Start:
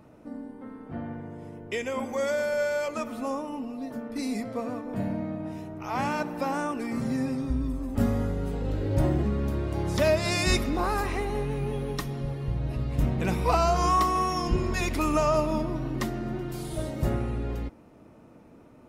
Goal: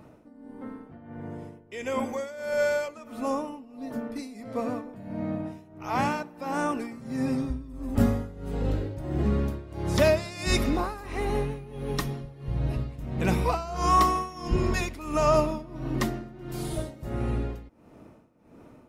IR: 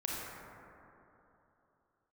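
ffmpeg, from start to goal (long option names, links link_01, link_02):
-af "tremolo=f=1.5:d=0.86,volume=3dB"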